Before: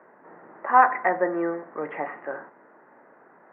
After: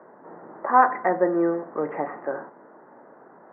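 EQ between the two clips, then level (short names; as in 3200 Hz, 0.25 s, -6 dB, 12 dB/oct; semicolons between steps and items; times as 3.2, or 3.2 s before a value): LPF 1300 Hz 12 dB/oct; dynamic EQ 800 Hz, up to -5 dB, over -32 dBFS, Q 1; air absorption 310 m; +6.5 dB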